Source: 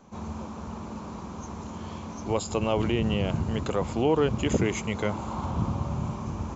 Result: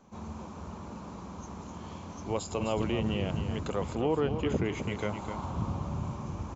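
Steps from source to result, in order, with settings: 3.95–4.82 air absorption 130 m; on a send: echo 0.257 s -8.5 dB; on the sum: gain -5 dB

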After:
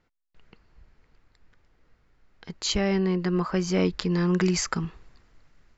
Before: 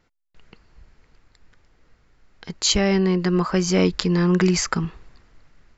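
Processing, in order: high shelf 6600 Hz -9.5 dB, from 4.11 s +2 dB; gain -5 dB

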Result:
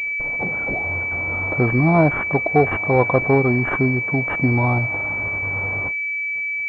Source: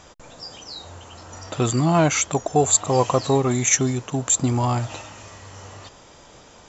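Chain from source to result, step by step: gate -41 dBFS, range -55 dB; upward compressor, threshold -22 dBFS; pulse-width modulation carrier 2300 Hz; gain +3 dB

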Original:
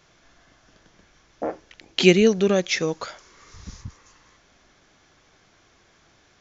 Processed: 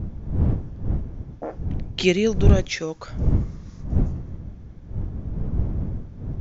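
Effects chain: wind noise 110 Hz -20 dBFS; mismatched tape noise reduction decoder only; gain -4 dB

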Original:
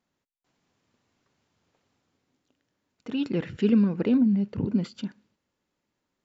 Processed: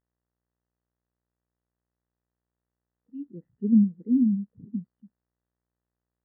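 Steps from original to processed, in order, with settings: buzz 60 Hz, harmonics 33, -40 dBFS -2 dB/oct; spectral expander 2.5:1

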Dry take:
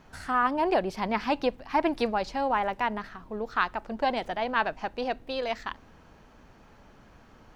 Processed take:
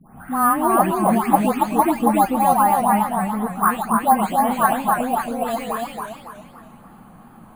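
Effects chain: spectral delay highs late, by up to 0.392 s; steep low-pass 4800 Hz 96 dB/oct; small resonant body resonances 210/780/1100 Hz, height 16 dB, ringing for 25 ms; careless resampling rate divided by 4×, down none, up hold; warbling echo 0.281 s, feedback 40%, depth 139 cents, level -3 dB; gain -1 dB

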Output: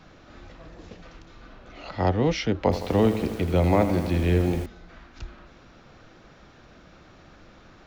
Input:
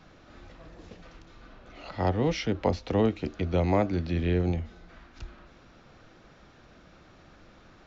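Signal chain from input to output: 2.62–4.66 lo-fi delay 82 ms, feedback 80%, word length 7-bit, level -10.5 dB; gain +3.5 dB

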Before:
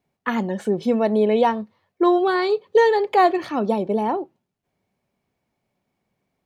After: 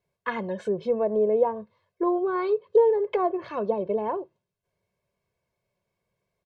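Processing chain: treble ducked by the level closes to 790 Hz, closed at -14.5 dBFS; comb 1.9 ms, depth 76%; gain -6 dB

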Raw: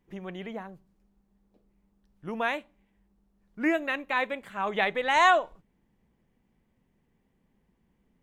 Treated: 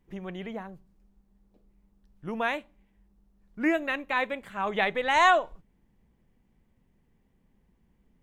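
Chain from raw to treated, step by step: low shelf 93 Hz +8.5 dB

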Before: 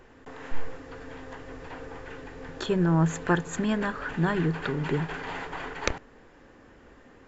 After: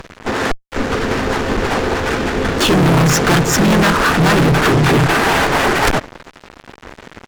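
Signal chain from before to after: harmoniser -4 st -3 dB, -3 st -6 dB, +4 st -16 dB; fuzz box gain 37 dB, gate -46 dBFS; gain +3 dB

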